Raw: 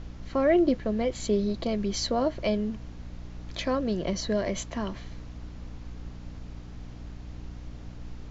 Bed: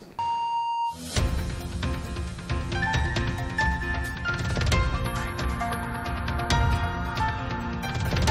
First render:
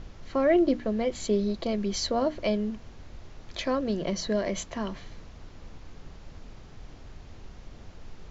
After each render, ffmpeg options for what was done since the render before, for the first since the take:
-af "bandreject=f=60:t=h:w=6,bandreject=f=120:t=h:w=6,bandreject=f=180:t=h:w=6,bandreject=f=240:t=h:w=6,bandreject=f=300:t=h:w=6"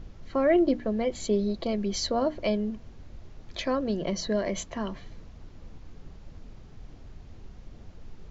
-af "afftdn=nr=6:nf=-48"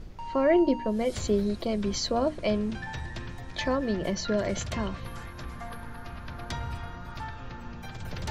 -filter_complex "[1:a]volume=-12dB[a];[0:a][a]amix=inputs=2:normalize=0"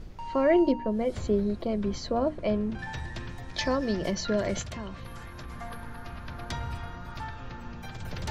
-filter_complex "[0:a]asettb=1/sr,asplit=3[a][b][c];[a]atrim=end=0.724[d];[b]atrim=start=0.72:end=2.79,asetpts=PTS-STARTPTS,afade=t=in:d=0.004:c=qsin,afade=t=out:st=2.066:d=0.004:c=qsin,highshelf=f=2.6k:g=-12[e];[c]atrim=start=2.786[f];[d][e]acrossfade=d=0.004:c1=hsin:c2=qsin[g];[g][f]acrossfade=d=0.004:c1=qsin:c2=hsin,asettb=1/sr,asplit=3[h][i][j];[h]atrim=end=3.554[k];[i]atrim=start=3.55:end=4.11,asetpts=PTS-STARTPTS,afade=t=in:d=0.004:c=qsin,afade=t=out:st=0.556:d=0.004:c=qsin,equalizer=f=5.3k:t=o:w=0.45:g=10.5[l];[j]atrim=start=4.106[m];[k][l]acrossfade=d=0.004:c1=hsin:c2=qsin[n];[n][m]acrossfade=d=0.004:c1=qsin:c2=hsin,asettb=1/sr,asplit=3[o][p][q];[o]atrim=end=4.614[r];[p]atrim=start=4.61:end=5.5,asetpts=PTS-STARTPTS,afade=t=in:d=0.004:c=qsin,afade=t=out:st=0.886:d=0.004:c=qsin,acompressor=threshold=-38dB:ratio=2:attack=3.2:release=140:knee=1:detection=peak[s];[q]atrim=start=5.496[t];[r][s]acrossfade=d=0.004:c1=hsin:c2=qsin[u];[u][t]acrossfade=d=0.004:c1=qsin:c2=hsin"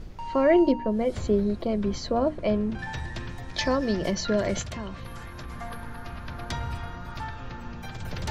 -af "volume=2.5dB"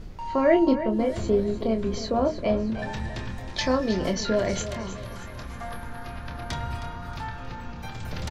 -filter_complex "[0:a]asplit=2[a][b];[b]adelay=27,volume=-7dB[c];[a][c]amix=inputs=2:normalize=0,aecho=1:1:315|630|945|1260:0.237|0.104|0.0459|0.0202"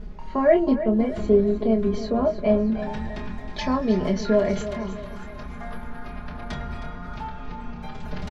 -af "lowpass=f=1.8k:p=1,aecho=1:1:4.8:0.85"

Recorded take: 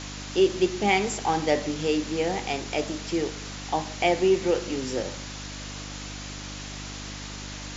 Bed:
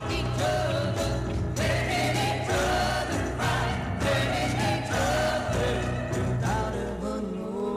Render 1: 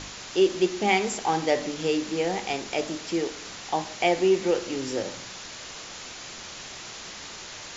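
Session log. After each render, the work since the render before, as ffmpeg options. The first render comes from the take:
-af "bandreject=f=50:t=h:w=4,bandreject=f=100:t=h:w=4,bandreject=f=150:t=h:w=4,bandreject=f=200:t=h:w=4,bandreject=f=250:t=h:w=4,bandreject=f=300:t=h:w=4"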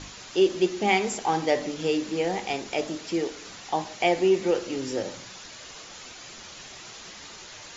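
-af "afftdn=nr=6:nf=-41"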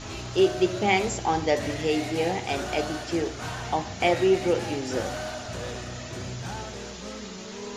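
-filter_complex "[1:a]volume=-8.5dB[a];[0:a][a]amix=inputs=2:normalize=0"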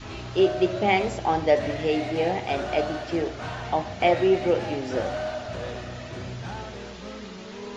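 -af "lowpass=4k,adynamicequalizer=threshold=0.01:dfrequency=620:dqfactor=3.4:tfrequency=620:tqfactor=3.4:attack=5:release=100:ratio=0.375:range=3:mode=boostabove:tftype=bell"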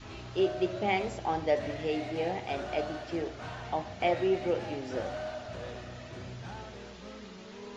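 -af "volume=-7.5dB"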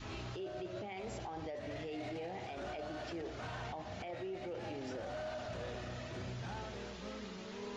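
-af "acompressor=threshold=-35dB:ratio=6,alimiter=level_in=11.5dB:limit=-24dB:level=0:latency=1:release=11,volume=-11.5dB"

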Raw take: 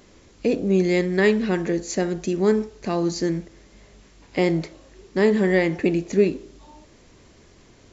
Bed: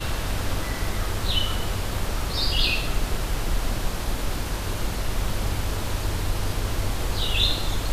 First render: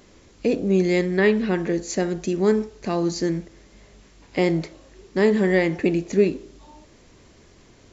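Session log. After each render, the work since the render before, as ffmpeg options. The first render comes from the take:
-filter_complex "[0:a]asettb=1/sr,asplit=3[a][b][c];[a]atrim=end=1.114[d];[b]atrim=start=1.11:end=1.7,asetpts=PTS-STARTPTS,afade=t=in:d=0.004:c=qsin,afade=t=out:st=0.586:d=0.004:c=qsin,acrossover=split=4600[e][f];[f]acompressor=threshold=-56dB:ratio=4:attack=1:release=60[g];[e][g]amix=inputs=2:normalize=0[h];[c]atrim=start=1.696[i];[d][h]acrossfade=d=0.004:c1=hsin:c2=qsin[j];[j][i]acrossfade=d=0.004:c1=qsin:c2=hsin"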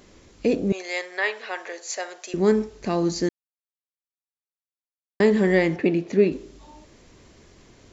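-filter_complex "[0:a]asettb=1/sr,asplit=3[a][b][c];[a]atrim=end=0.724[d];[b]atrim=start=0.72:end=2.34,asetpts=PTS-STARTPTS,afade=t=in:d=0.004:c=qsin,afade=t=out:st=1.616:d=0.004:c=qsin,highpass=f=620:w=0.5412,highpass=f=620:w=1.3066[e];[c]atrim=start=2.336[f];[d][e]acrossfade=d=0.004:c1=hsin:c2=qsin[g];[g][f]acrossfade=d=0.004:c1=qsin:c2=hsin,asettb=1/sr,asplit=3[h][i][j];[h]atrim=end=5.764[k];[i]atrim=start=5.76:end=6.32,asetpts=PTS-STARTPTS,afade=t=in:d=0.004:c=qsin,afade=t=out:st=0.556:d=0.004:c=qsin,highpass=130,lowpass=4.1k[l];[j]atrim=start=6.316[m];[k][l]acrossfade=d=0.004:c1=hsin:c2=qsin[n];[n][m]acrossfade=d=0.004:c1=qsin:c2=hsin,asplit=3[o][p][q];[o]atrim=end=3.29,asetpts=PTS-STARTPTS,afade=t=out:st=3.286:d=0.004:c=hsin[r];[p]atrim=start=3.29:end=5.2,asetpts=PTS-STARTPTS,volume=0[s];[q]atrim=start=5.2,asetpts=PTS-STARTPTS,afade=t=in:d=0.004:c=hsin[t];[r][s][t]concat=n=3:v=0:a=1"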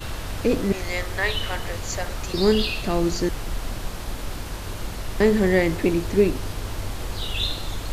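-filter_complex "[1:a]volume=-4dB[a];[0:a][a]amix=inputs=2:normalize=0"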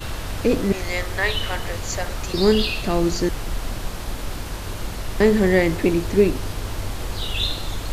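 -af "volume=2dB"

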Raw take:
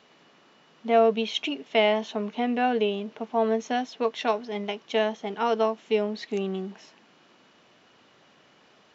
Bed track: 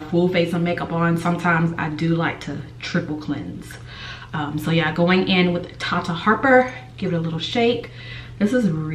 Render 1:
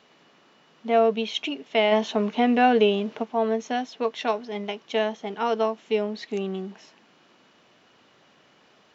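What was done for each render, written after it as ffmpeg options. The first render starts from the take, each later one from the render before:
-filter_complex "[0:a]asplit=3[a][b][c];[a]afade=t=out:st=1.91:d=0.02[d];[b]acontrast=48,afade=t=in:st=1.91:d=0.02,afade=t=out:st=3.22:d=0.02[e];[c]afade=t=in:st=3.22:d=0.02[f];[d][e][f]amix=inputs=3:normalize=0"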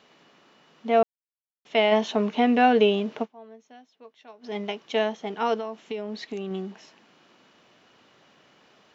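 -filter_complex "[0:a]asettb=1/sr,asplit=3[a][b][c];[a]atrim=end=5.544[d];[b]atrim=start=5.54:end=6.51,asetpts=PTS-STARTPTS,afade=t=in:d=0.004:c=qsin,afade=t=out:st=0.966:d=0.004:c=qsin,acompressor=threshold=-28dB:ratio=6:attack=3.2:release=140:knee=1:detection=peak[e];[c]atrim=start=6.506[f];[d][e]acrossfade=d=0.004:c1=hsin:c2=qsin[g];[g][f]acrossfade=d=0.004:c1=qsin:c2=hsin,asplit=5[h][i][j][k][l];[h]atrim=end=1.03,asetpts=PTS-STARTPTS,afade=t=out:st=1.026:d=0.004:c=hsin[m];[i]atrim=start=1.03:end=1.65,asetpts=PTS-STARTPTS,volume=0[n];[j]atrim=start=1.65:end=3.42,asetpts=PTS-STARTPTS,afade=t=in:d=0.004:c=hsin,afade=t=out:st=1.6:d=0.17:c=exp:silence=0.0749894[o];[k]atrim=start=3.42:end=4.28,asetpts=PTS-STARTPTS,volume=-22.5dB[p];[l]atrim=start=4.28,asetpts=PTS-STARTPTS,afade=t=in:d=0.17:c=exp:silence=0.0749894[q];[m][n][o][p][q]concat=n=5:v=0:a=1"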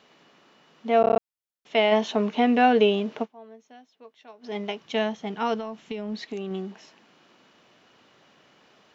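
-filter_complex "[0:a]asplit=3[a][b][c];[a]afade=t=out:st=4.78:d=0.02[d];[b]asubboost=boost=4:cutoff=180,afade=t=in:st=4.78:d=0.02,afade=t=out:st=6.19:d=0.02[e];[c]afade=t=in:st=6.19:d=0.02[f];[d][e][f]amix=inputs=3:normalize=0,asplit=7[g][h][i][j][k][l][m];[g]atrim=end=1.042[n];[h]atrim=start=1.008:end=1.042[o];[i]atrim=start=1.008:end=1.042[p];[j]atrim=start=1.008:end=1.042[q];[k]atrim=start=1.008:end=1.042[r];[l]atrim=start=1.008:end=1.042[s];[m]atrim=start=1.188[t];[n][o]acrossfade=d=0.004:c1=hsin:c2=hsin[u];[u][p]acrossfade=d=0.004:c1=hsin:c2=hsin[v];[v][q]acrossfade=d=0.004:c1=hsin:c2=hsin[w];[w][r]acrossfade=d=0.004:c1=hsin:c2=hsin[x];[x][s]acrossfade=d=0.004:c1=hsin:c2=hsin[y];[y][t]acrossfade=d=0.004:c1=hsin:c2=hsin"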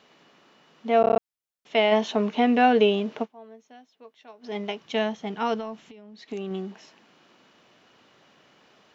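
-filter_complex "[0:a]asettb=1/sr,asplit=3[a][b][c];[a]atrim=end=5.854[d];[b]atrim=start=5.85:end=6.28,asetpts=PTS-STARTPTS,afade=t=in:d=0.004:c=qsin,afade=t=out:st=0.426:d=0.004:c=qsin,acompressor=threshold=-43dB:ratio=12:attack=3.2:release=140:knee=1:detection=peak[e];[c]atrim=start=6.276[f];[d][e]acrossfade=d=0.004:c1=hsin:c2=qsin[g];[g][f]acrossfade=d=0.004:c1=qsin:c2=hsin"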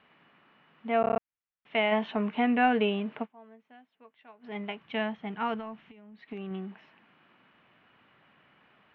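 -af "lowpass=f=2.6k:w=0.5412,lowpass=f=2.6k:w=1.3066,equalizer=f=450:t=o:w=1.8:g=-9"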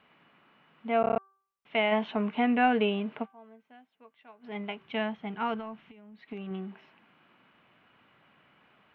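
-af "bandreject=f=1.8k:w=18,bandreject=f=389.3:t=h:w=4,bandreject=f=778.6:t=h:w=4,bandreject=f=1.1679k:t=h:w=4,bandreject=f=1.5572k:t=h:w=4"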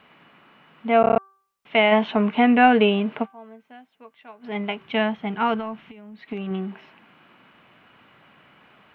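-af "volume=9dB"

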